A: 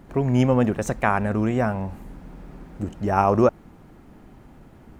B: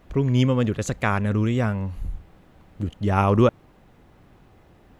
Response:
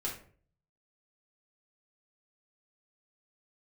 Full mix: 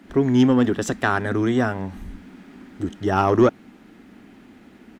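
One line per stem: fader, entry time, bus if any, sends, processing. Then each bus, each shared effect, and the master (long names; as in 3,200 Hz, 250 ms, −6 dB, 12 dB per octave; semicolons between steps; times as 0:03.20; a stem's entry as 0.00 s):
+1.5 dB, 0.00 s, no send, Chebyshev high-pass filter 190 Hz, order 6
−2.0 dB, 0.7 ms, polarity flipped, no send, noise gate with hold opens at −47 dBFS; parametric band 440 Hz +9 dB 0.77 octaves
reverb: not used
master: octave-band graphic EQ 250/500/1,000 Hz +6/−10/−10 dB; mid-hump overdrive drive 13 dB, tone 3,300 Hz, clips at −5.5 dBFS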